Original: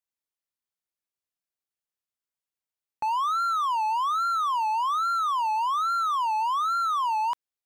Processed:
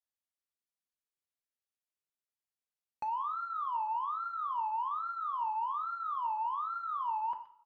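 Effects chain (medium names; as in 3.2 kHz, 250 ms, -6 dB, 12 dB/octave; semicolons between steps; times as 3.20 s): delay 123 ms -21.5 dB; low-pass that closes with the level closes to 1.2 kHz, closed at -25.5 dBFS; two-slope reverb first 0.44 s, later 1.6 s, from -25 dB, DRR 5 dB; trim -8 dB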